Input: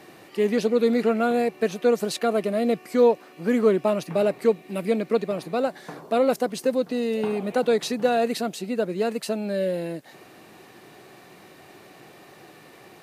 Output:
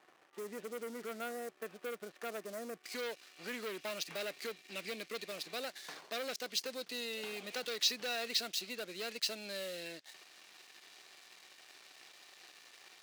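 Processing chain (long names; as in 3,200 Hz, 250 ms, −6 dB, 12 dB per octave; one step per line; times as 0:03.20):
low-pass filter 1,400 Hz 24 dB per octave, from 0:02.84 5,300 Hz
leveller curve on the samples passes 2
dynamic equaliser 910 Hz, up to −7 dB, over −33 dBFS, Q 1.1
downward compressor 2.5 to 1, threshold −17 dBFS, peak gain reduction 3.5 dB
first difference
level +1 dB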